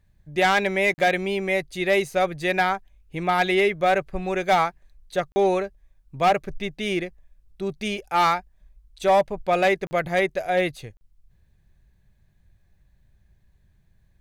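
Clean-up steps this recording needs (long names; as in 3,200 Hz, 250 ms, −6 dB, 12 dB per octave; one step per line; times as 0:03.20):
clipped peaks rebuilt −13 dBFS
repair the gap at 0:00.94/0:05.32/0:09.87/0:10.97, 40 ms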